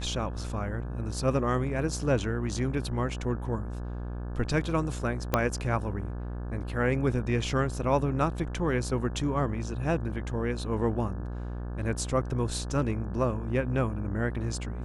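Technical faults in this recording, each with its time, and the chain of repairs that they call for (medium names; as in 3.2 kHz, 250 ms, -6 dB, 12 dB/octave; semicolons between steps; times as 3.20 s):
buzz 60 Hz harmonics 29 -35 dBFS
5.34 s: pop -9 dBFS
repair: de-click; de-hum 60 Hz, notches 29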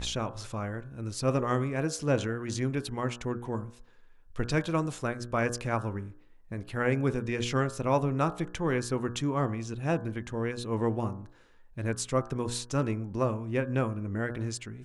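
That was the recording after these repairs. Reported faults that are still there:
5.34 s: pop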